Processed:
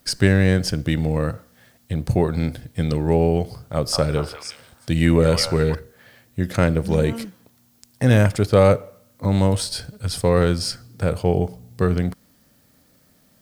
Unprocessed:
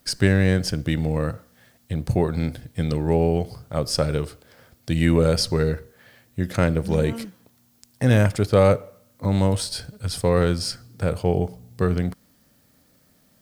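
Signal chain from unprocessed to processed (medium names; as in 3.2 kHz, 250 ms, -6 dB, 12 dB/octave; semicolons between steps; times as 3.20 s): 3.74–5.75 s: repeats whose band climbs or falls 181 ms, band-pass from 1 kHz, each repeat 1.4 oct, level -2 dB; trim +2 dB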